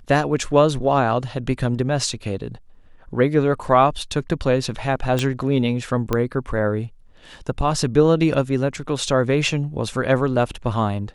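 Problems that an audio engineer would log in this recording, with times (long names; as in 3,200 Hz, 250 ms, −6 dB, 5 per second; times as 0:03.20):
0:05.19: click −8 dBFS
0:06.13: click −8 dBFS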